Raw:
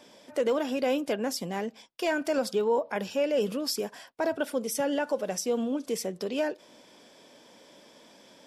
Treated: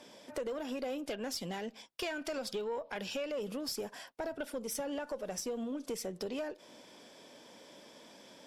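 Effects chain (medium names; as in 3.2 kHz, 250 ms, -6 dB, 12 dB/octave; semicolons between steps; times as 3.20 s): 0.98–3.32 s: dynamic bell 3.3 kHz, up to +7 dB, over -48 dBFS, Q 0.7; compression 6:1, threshold -33 dBFS, peak gain reduction 11.5 dB; valve stage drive 28 dB, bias 0.3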